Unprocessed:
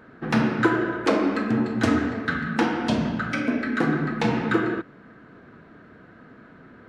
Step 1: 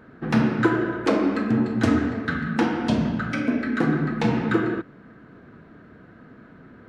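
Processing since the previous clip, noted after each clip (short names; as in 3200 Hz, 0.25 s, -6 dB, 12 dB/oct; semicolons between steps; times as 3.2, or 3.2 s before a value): low shelf 340 Hz +5.5 dB; gain -2 dB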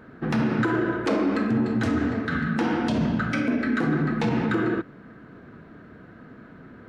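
limiter -16.5 dBFS, peak gain reduction 9.5 dB; gain +1.5 dB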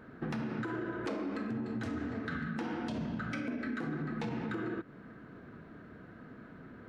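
compressor 6:1, threshold -29 dBFS, peak gain reduction 10 dB; gain -5 dB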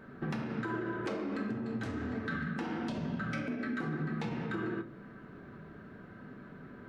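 reverb RT60 0.45 s, pre-delay 5 ms, DRR 5.5 dB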